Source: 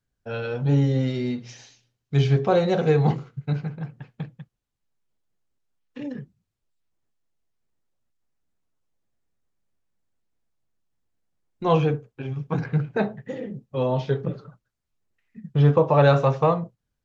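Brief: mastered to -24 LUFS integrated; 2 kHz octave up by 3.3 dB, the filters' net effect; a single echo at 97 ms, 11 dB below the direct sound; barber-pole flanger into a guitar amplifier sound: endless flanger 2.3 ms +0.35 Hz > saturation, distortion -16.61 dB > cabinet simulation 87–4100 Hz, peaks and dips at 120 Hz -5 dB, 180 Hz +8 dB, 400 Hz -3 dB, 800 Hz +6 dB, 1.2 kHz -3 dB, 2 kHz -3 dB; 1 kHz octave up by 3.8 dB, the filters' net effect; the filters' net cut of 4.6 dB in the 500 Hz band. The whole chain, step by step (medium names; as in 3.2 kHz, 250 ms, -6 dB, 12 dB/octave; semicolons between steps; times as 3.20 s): peaking EQ 500 Hz -6 dB; peaking EQ 1 kHz +3 dB; peaking EQ 2 kHz +5.5 dB; delay 97 ms -11 dB; endless flanger 2.3 ms +0.35 Hz; saturation -15 dBFS; cabinet simulation 87–4100 Hz, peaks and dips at 120 Hz -5 dB, 180 Hz +8 dB, 400 Hz -3 dB, 800 Hz +6 dB, 1.2 kHz -3 dB, 2 kHz -3 dB; trim +3 dB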